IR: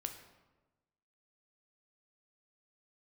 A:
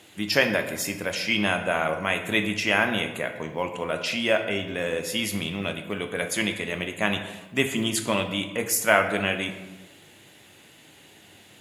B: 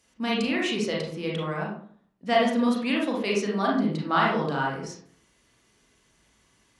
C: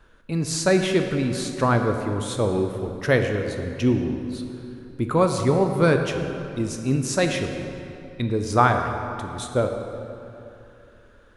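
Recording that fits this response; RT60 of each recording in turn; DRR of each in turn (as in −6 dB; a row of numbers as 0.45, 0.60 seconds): A; 1.2, 0.55, 3.0 seconds; 5.5, −4.0, 5.0 decibels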